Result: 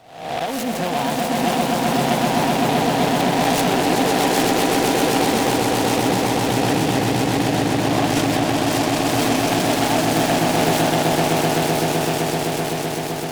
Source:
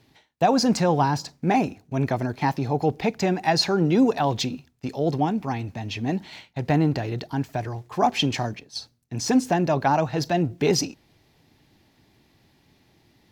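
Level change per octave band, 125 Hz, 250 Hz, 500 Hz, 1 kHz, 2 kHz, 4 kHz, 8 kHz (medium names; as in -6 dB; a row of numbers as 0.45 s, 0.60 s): +2.5 dB, +5.0 dB, +6.0 dB, +6.5 dB, +10.0 dB, +7.5 dB, +10.5 dB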